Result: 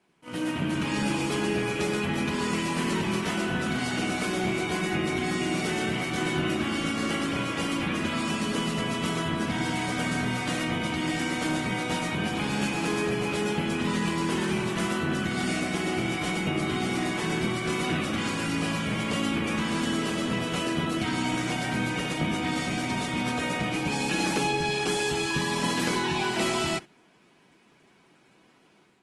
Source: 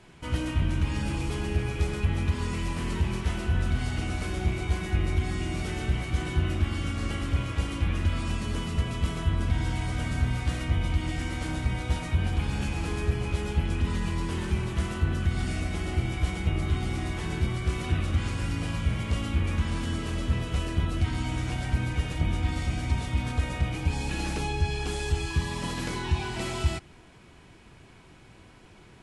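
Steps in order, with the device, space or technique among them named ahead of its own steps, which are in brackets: video call (HPF 170 Hz 24 dB/oct; AGC gain up to 7 dB; gate -35 dBFS, range -12 dB; Opus 24 kbps 48000 Hz)

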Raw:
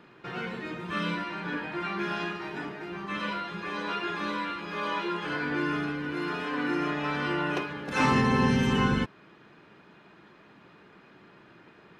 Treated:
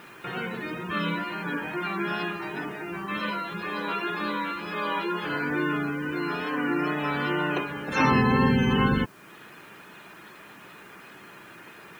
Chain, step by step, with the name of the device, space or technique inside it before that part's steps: spectral gate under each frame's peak -25 dB strong; noise-reduction cassette on a plain deck (mismatched tape noise reduction encoder only; wow and flutter 26 cents; white noise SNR 32 dB); gain +2.5 dB

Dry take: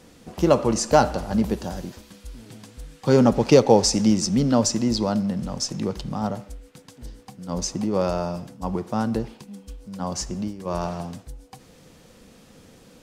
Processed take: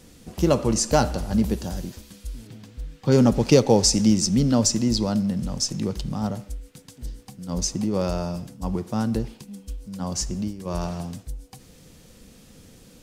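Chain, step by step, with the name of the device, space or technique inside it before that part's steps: 2.47–3.12 bell 10000 Hz -13.5 dB 1.5 oct; smiley-face EQ (low shelf 95 Hz +7 dB; bell 890 Hz -5 dB 2.1 oct; high shelf 6700 Hz +6 dB)

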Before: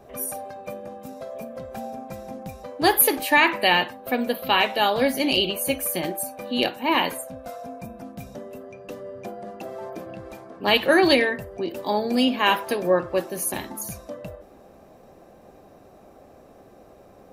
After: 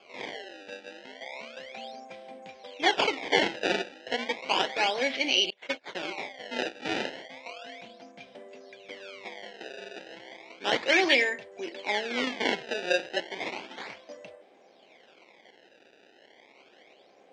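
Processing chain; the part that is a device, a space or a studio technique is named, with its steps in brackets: 5.5–5.95 gate -24 dBFS, range -32 dB; circuit-bent sampling toy (decimation with a swept rate 23×, swing 160% 0.33 Hz; speaker cabinet 400–5500 Hz, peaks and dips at 600 Hz -3 dB, 1200 Hz -8 dB, 2200 Hz +9 dB, 3200 Hz +6 dB); gain -5 dB

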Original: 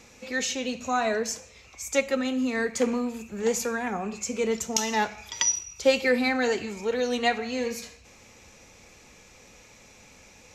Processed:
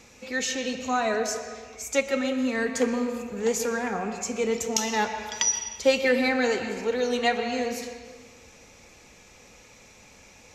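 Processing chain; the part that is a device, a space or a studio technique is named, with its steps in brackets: filtered reverb send (on a send: HPF 270 Hz + LPF 5100 Hz + reverb RT60 1.6 s, pre-delay 0.112 s, DRR 7 dB)

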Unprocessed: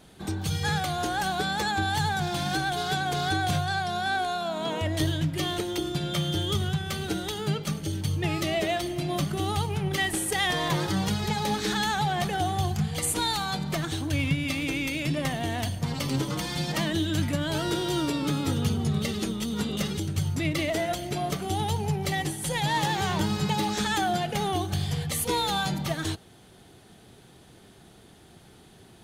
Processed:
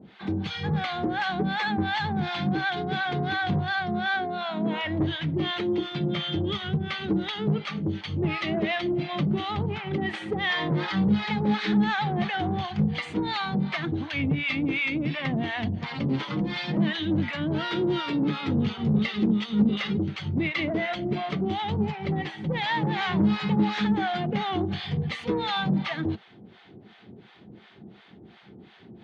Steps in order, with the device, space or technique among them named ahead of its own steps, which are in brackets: 21.95–22.54 air absorption 53 m; guitar amplifier with harmonic tremolo (harmonic tremolo 2.8 Hz, depth 100%, crossover 680 Hz; soft clip -26 dBFS, distortion -15 dB; speaker cabinet 100–3700 Hz, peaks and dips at 210 Hz +9 dB, 350 Hz +3 dB, 610 Hz -3 dB, 2100 Hz +5 dB); gain +6 dB

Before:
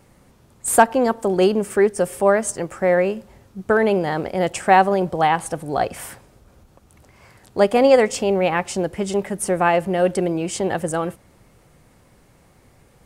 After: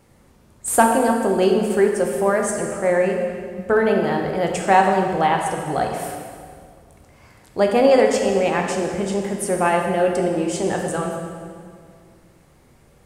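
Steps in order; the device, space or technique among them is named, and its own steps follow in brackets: stairwell (reverb RT60 2.1 s, pre-delay 12 ms, DRR 1.5 dB); gain -2.5 dB

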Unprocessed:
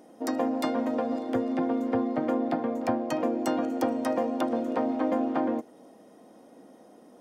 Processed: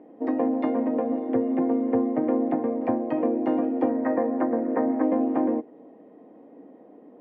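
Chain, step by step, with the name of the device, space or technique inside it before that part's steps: 3.89–5.02 resonant high shelf 2500 Hz -11 dB, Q 3; bass cabinet (speaker cabinet 79–2200 Hz, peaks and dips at 290 Hz +7 dB, 440 Hz +6 dB, 1400 Hz -9 dB)

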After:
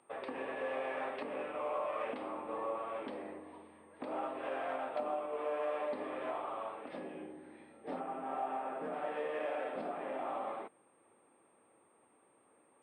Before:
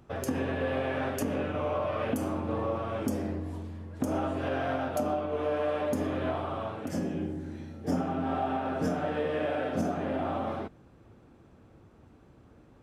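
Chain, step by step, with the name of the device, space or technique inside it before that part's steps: 8–8.93 air absorption 220 m; toy sound module (decimation joined by straight lines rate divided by 4×; pulse-width modulation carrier 8600 Hz; speaker cabinet 610–3700 Hz, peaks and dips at 680 Hz -4 dB, 1500 Hz -8 dB, 3000 Hz -4 dB); gain -1 dB

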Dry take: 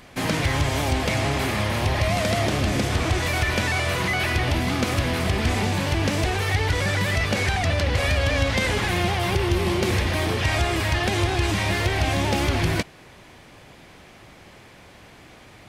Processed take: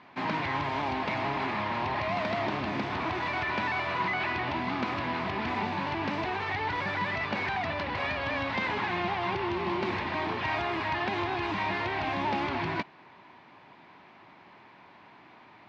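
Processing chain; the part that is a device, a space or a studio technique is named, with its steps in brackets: kitchen radio (speaker cabinet 190–3800 Hz, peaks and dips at 500 Hz -8 dB, 960 Hz +10 dB, 3200 Hz -5 dB); gain -6 dB

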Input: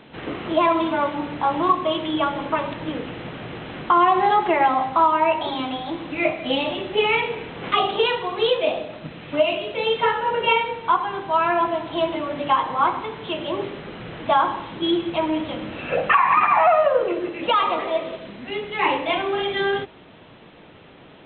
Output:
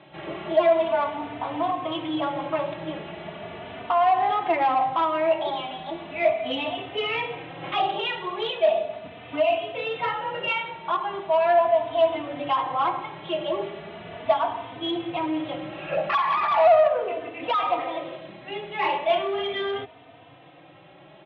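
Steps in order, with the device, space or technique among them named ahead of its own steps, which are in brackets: barber-pole flanger into a guitar amplifier (endless flanger 3.2 ms +0.38 Hz; soft clip -17.5 dBFS, distortion -14 dB; speaker cabinet 93–3800 Hz, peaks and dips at 230 Hz -9 dB, 470 Hz -5 dB, 670 Hz +9 dB, 1500 Hz -3 dB)

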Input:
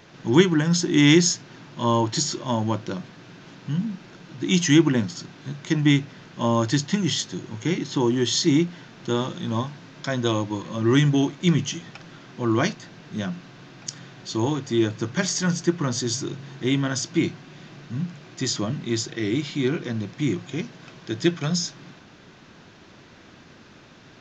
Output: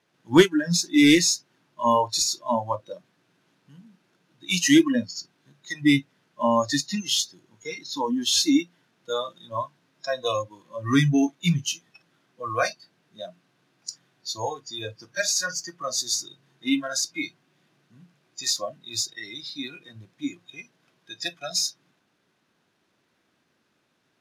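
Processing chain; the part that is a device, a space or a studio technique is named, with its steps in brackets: early wireless headset (HPF 220 Hz 6 dB/oct; CVSD 64 kbps); spectral noise reduction 24 dB; gain +4 dB

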